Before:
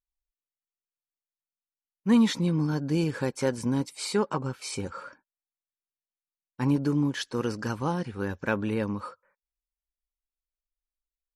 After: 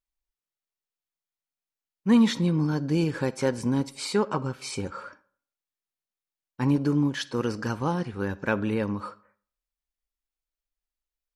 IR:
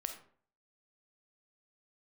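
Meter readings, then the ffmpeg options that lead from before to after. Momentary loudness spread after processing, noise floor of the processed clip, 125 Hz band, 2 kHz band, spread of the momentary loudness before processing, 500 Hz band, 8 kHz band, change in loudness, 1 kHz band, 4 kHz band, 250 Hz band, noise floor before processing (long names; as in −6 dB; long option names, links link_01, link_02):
11 LU, below −85 dBFS, +1.5 dB, +1.5 dB, 11 LU, +1.5 dB, −0.5 dB, +1.5 dB, +1.5 dB, +1.0 dB, +1.5 dB, below −85 dBFS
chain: -filter_complex "[0:a]asplit=2[link_01][link_02];[1:a]atrim=start_sample=2205,lowpass=7300[link_03];[link_02][link_03]afir=irnorm=-1:irlink=0,volume=-7.5dB[link_04];[link_01][link_04]amix=inputs=2:normalize=0,volume=-1dB"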